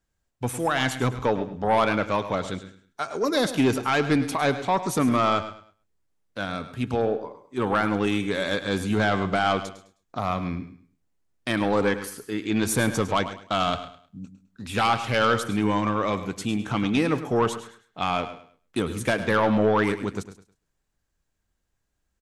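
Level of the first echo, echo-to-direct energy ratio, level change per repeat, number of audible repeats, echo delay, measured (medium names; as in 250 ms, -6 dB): -13.0 dB, -11.5 dB, no regular repeats, 5, 104 ms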